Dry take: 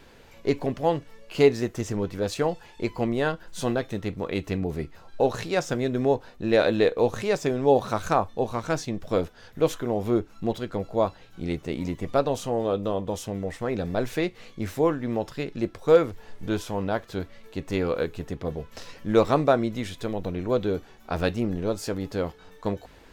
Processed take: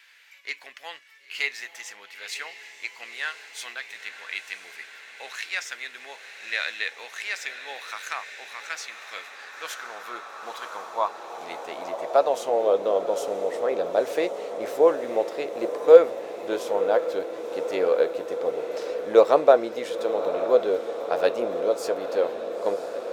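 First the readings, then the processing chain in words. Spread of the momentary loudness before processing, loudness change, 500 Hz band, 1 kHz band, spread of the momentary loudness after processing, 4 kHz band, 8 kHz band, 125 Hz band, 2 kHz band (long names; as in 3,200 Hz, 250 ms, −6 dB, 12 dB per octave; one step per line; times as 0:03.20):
11 LU, +1.5 dB, +2.5 dB, +0.5 dB, 17 LU, +1.5 dB, 0.0 dB, below −20 dB, +3.5 dB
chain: feedback delay with all-pass diffusion 981 ms, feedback 74%, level −11 dB
high-pass filter sweep 2,000 Hz → 510 Hz, 0:09.10–0:12.82
level −1 dB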